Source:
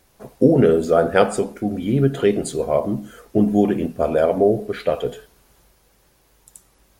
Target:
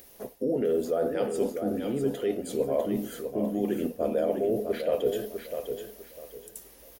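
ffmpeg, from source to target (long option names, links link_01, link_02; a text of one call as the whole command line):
ffmpeg -i in.wav -af "alimiter=limit=-9dB:level=0:latency=1:release=16,aexciter=amount=5.2:drive=5.1:freq=2100,areverse,acompressor=threshold=-28dB:ratio=6,areverse,equalizer=frequency=2300:width_type=o:width=0.56:gain=-10.5,acompressor=mode=upward:threshold=-43dB:ratio=2.5,equalizer=frequency=125:width_type=o:width=1:gain=-4,equalizer=frequency=250:width_type=o:width=1:gain=5,equalizer=frequency=500:width_type=o:width=1:gain=9,equalizer=frequency=2000:width_type=o:width=1:gain=7,equalizer=frequency=4000:width_type=o:width=1:gain=-7,equalizer=frequency=8000:width_type=o:width=1:gain=-11,aecho=1:1:651|1302|1953:0.447|0.121|0.0326,volume=-4dB" out.wav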